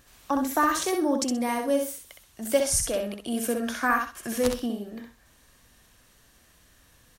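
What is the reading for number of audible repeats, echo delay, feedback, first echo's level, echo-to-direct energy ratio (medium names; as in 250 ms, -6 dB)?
3, 64 ms, 22%, -5.0 dB, -5.0 dB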